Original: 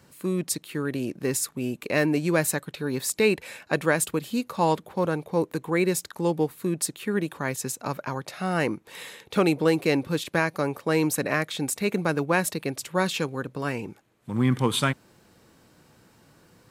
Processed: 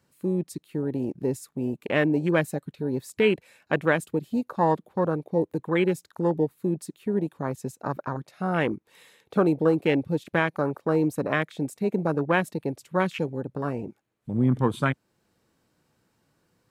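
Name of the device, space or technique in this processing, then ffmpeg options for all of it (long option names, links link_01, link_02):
parallel compression: -filter_complex "[0:a]asplit=2[link_01][link_02];[link_02]acompressor=threshold=-40dB:ratio=6,volume=-5dB[link_03];[link_01][link_03]amix=inputs=2:normalize=0,afwtdn=0.0447"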